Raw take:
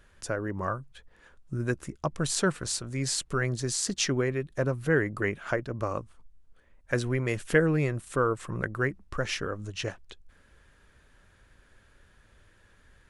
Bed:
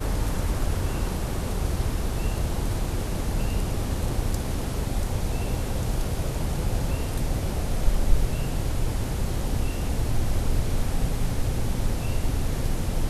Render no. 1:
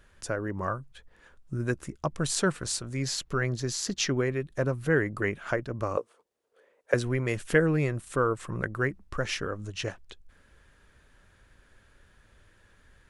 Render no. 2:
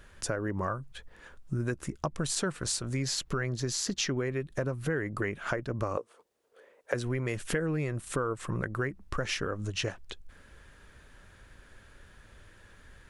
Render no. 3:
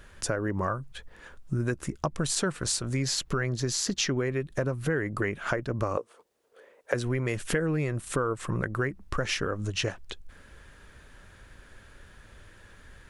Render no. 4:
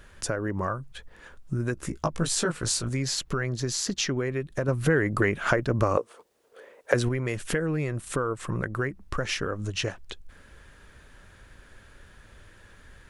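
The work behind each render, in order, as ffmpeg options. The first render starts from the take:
-filter_complex "[0:a]asettb=1/sr,asplit=3[a][b][c];[a]atrim=end=3.024[d];[b]atrim=start=3.02:end=4.17,asetpts=PTS-STARTPTS,afade=t=in:d=0.004:c=qsin,afade=t=out:st=1.146:d=0.004:c=qsin,equalizer=f=8.7k:t=o:w=0.31:g=-12[e];[c]atrim=start=4.166[f];[d][e]acrossfade=d=0.004:c1=hsin:c2=qsin[g];[g][f]acrossfade=d=0.004:c1=qsin:c2=hsin,asettb=1/sr,asplit=3[h][i][j];[h]atrim=end=5.974[k];[i]atrim=start=5.97:end=6.94,asetpts=PTS-STARTPTS,afade=t=in:d=0.004:c=qsin,afade=t=out:st=0.966:d=0.004:c=qsin,highpass=f=460:t=q:w=4.4[l];[j]atrim=start=6.936[m];[k][l]acrossfade=d=0.004:c1=hsin:c2=qsin[n];[n][m]acrossfade=d=0.004:c1=qsin:c2=hsin"
-filter_complex "[0:a]asplit=2[a][b];[b]alimiter=limit=-19dB:level=0:latency=1:release=31,volume=-2dB[c];[a][c]amix=inputs=2:normalize=0,acompressor=threshold=-29dB:ratio=4"
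-af "volume=3dB"
-filter_complex "[0:a]asettb=1/sr,asplit=3[a][b][c];[a]atrim=end=1.754[d];[b]atrim=start=1.75:end=2.89,asetpts=PTS-STARTPTS,afade=t=in:d=0.004:c=qsin,afade=t=out:st=1.136:d=0.004:c=qsin,asplit=2[e][f];[f]adelay=18,volume=-3dB[g];[e][g]amix=inputs=2:normalize=0,atrim=end_sample=50274[h];[c]atrim=start=2.886[i];[d][h]acrossfade=d=0.004:c1=hsin:c2=qsin[j];[j][i]acrossfade=d=0.004:c1=qsin:c2=hsin,asettb=1/sr,asplit=3[k][l][m];[k]atrim=end=4.684[n];[l]atrim=start=4.68:end=7.09,asetpts=PTS-STARTPTS,afade=t=in:d=0.004:c=qsin,afade=t=out:st=2.406:d=0.004:c=qsin,acontrast=40[o];[m]atrim=start=7.086[p];[n][o]acrossfade=d=0.004:c1=hsin:c2=qsin[q];[q][p]acrossfade=d=0.004:c1=qsin:c2=hsin"

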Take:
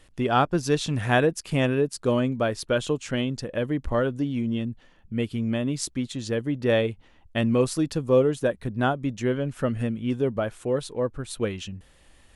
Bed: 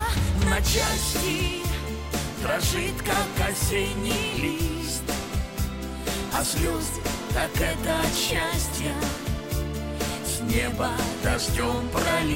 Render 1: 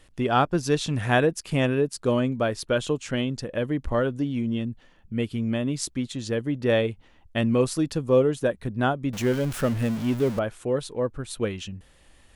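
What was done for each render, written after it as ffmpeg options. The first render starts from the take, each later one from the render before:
-filter_complex "[0:a]asettb=1/sr,asplit=3[a][b][c];[a]atrim=end=9.134[d];[b]atrim=start=9.13:end=10.39,asetpts=PTS-STARTPTS,afade=t=in:d=0.004:c=qsin,afade=t=out:st=1.256:d=0.004:c=qsin,aeval=exprs='val(0)+0.5*0.0299*sgn(val(0))':c=same[e];[c]atrim=start=10.386[f];[d][e]acrossfade=d=0.004:c1=hsin:c2=qsin[g];[g][f]acrossfade=d=0.004:c1=qsin:c2=hsin"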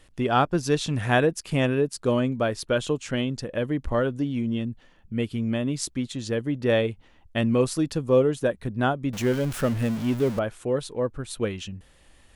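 -af anull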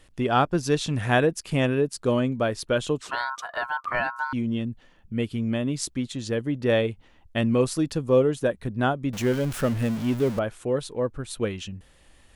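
-filter_complex "[0:a]asettb=1/sr,asplit=3[a][b][c];[a]atrim=end=3.014[d];[b]atrim=start=3.01:end=4.33,asetpts=PTS-STARTPTS,afade=t=in:d=0.004:c=qsin,afade=t=out:st=1.316:d=0.004:c=qsin,aeval=exprs='val(0)*sin(2*PI*1200*n/s)':c=same[e];[c]atrim=start=4.326[f];[d][e]acrossfade=d=0.004:c1=hsin:c2=qsin[g];[g][f]acrossfade=d=0.004:c1=qsin:c2=hsin"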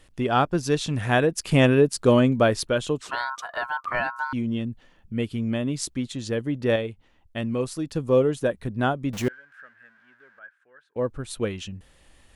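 -filter_complex "[0:a]asettb=1/sr,asplit=3[a][b][c];[a]atrim=end=9.284[d];[b]atrim=start=9.28:end=10.96,asetpts=PTS-STARTPTS,afade=t=in:d=0.004:c=qsin,afade=t=out:st=1.676:d=0.004:c=qsin,bandpass=f=1.6k:t=q:w=16[e];[c]atrim=start=10.956[f];[d][e]acrossfade=d=0.004:c1=hsin:c2=qsin[g];[g][f]acrossfade=d=0.004:c1=qsin:c2=hsin,asplit=5[h][i][j][k][l];[h]atrim=end=1.382[m];[i]atrim=start=1.378:end=2.672,asetpts=PTS-STARTPTS,volume=5.5dB[n];[j]atrim=start=2.668:end=6.762[o];[k]atrim=start=6.758:end=7.952,asetpts=PTS-STARTPTS,volume=-5dB[p];[l]atrim=start=7.948[q];[m][n]acrossfade=d=0.004:c1=hsin:c2=hsin[r];[r][o]acrossfade=d=0.004:c1=hsin:c2=hsin[s];[s][p]acrossfade=d=0.004:c1=hsin:c2=hsin[t];[t][q]acrossfade=d=0.004:c1=hsin:c2=hsin"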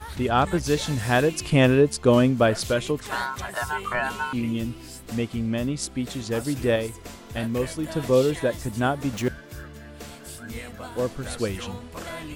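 -filter_complex "[1:a]volume=-12dB[a];[0:a][a]amix=inputs=2:normalize=0"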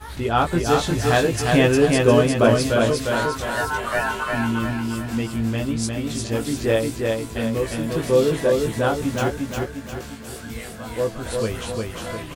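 -filter_complex "[0:a]asplit=2[a][b];[b]adelay=18,volume=-4dB[c];[a][c]amix=inputs=2:normalize=0,aecho=1:1:354|708|1062|1416|1770|2124:0.708|0.333|0.156|0.0735|0.0345|0.0162"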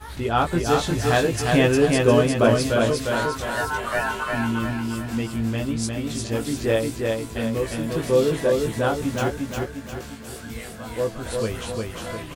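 -af "volume=-1.5dB"

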